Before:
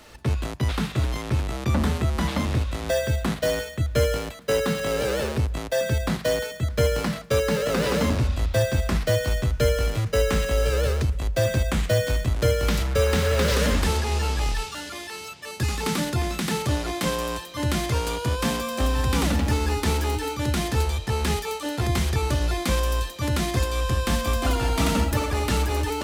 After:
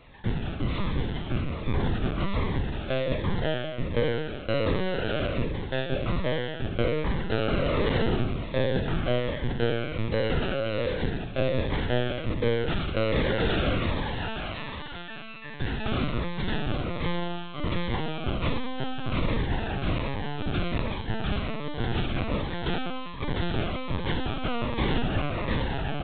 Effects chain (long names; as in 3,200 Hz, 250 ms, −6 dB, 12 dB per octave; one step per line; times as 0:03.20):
peak hold with a decay on every bin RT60 1.38 s
high-pass filter 96 Hz 24 dB per octave
on a send: single-tap delay 107 ms −13.5 dB
on the sum: linear-prediction vocoder at 8 kHz pitch kept
phaser whose notches keep moving one way falling 1.3 Hz
level −3 dB